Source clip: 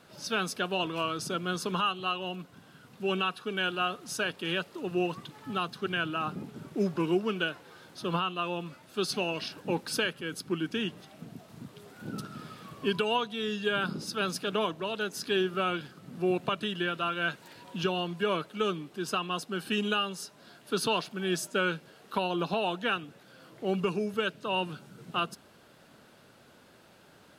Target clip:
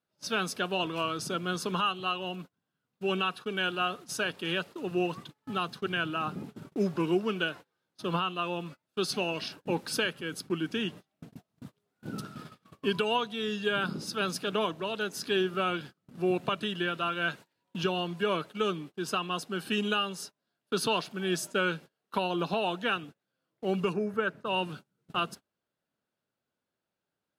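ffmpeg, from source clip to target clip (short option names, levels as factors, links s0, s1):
-filter_complex "[0:a]agate=range=0.0316:threshold=0.00708:ratio=16:detection=peak,asplit=3[s0][s1][s2];[s0]afade=t=out:st=23.92:d=0.02[s3];[s1]highshelf=f=2300:t=q:w=1.5:g=-9.5,afade=t=in:st=23.92:d=0.02,afade=t=out:st=24.45:d=0.02[s4];[s2]afade=t=in:st=24.45:d=0.02[s5];[s3][s4][s5]amix=inputs=3:normalize=0"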